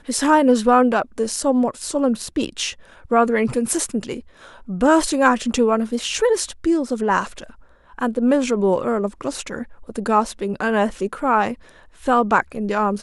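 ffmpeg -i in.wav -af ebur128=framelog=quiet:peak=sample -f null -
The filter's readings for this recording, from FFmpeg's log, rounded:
Integrated loudness:
  I:         -19.7 LUFS
  Threshold: -30.3 LUFS
Loudness range:
  LRA:         2.9 LU
  Threshold: -40.8 LUFS
  LRA low:   -22.3 LUFS
  LRA high:  -19.5 LUFS
Sample peak:
  Peak:       -3.5 dBFS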